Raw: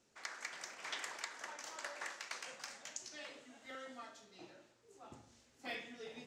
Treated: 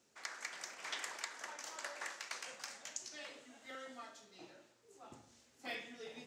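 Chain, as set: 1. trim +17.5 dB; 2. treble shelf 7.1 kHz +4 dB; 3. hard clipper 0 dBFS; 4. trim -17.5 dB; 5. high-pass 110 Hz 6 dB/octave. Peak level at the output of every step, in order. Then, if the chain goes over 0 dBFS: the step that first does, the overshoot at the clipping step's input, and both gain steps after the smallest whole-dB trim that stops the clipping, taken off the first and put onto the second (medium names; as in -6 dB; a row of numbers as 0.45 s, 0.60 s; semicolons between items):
-6.0 dBFS, -5.0 dBFS, -5.0 dBFS, -22.5 dBFS, -22.5 dBFS; nothing clips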